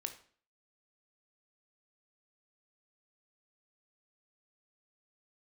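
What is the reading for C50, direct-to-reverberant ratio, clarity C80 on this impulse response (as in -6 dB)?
11.5 dB, 6.5 dB, 15.5 dB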